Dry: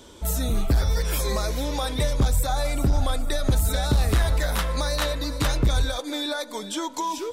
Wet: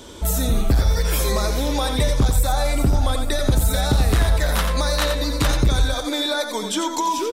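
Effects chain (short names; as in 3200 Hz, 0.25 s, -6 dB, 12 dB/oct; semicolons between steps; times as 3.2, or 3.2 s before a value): echo 87 ms -7 dB; in parallel at +1.5 dB: compressor, threshold -27 dBFS, peak gain reduction 11.5 dB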